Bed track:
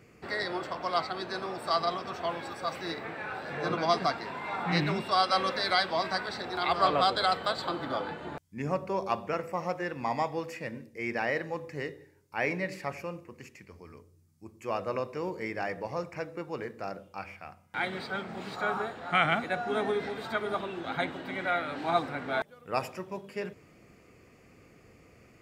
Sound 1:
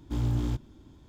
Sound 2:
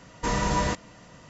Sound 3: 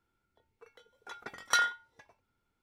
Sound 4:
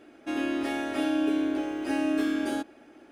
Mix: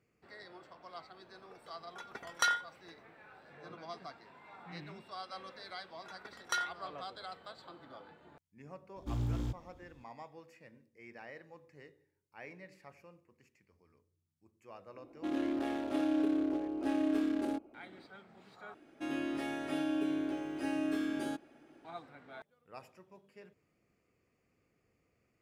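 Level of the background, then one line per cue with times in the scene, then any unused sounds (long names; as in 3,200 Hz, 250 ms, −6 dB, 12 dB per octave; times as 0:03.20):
bed track −19.5 dB
0:00.89: mix in 3 −3 dB
0:04.99: mix in 3 −7.5 dB
0:08.96: mix in 1 −7 dB
0:14.96: mix in 4 −4.5 dB + adaptive Wiener filter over 25 samples
0:18.74: overwrite with 4 −8 dB + parametric band 150 Hz +13 dB 0.32 octaves
not used: 2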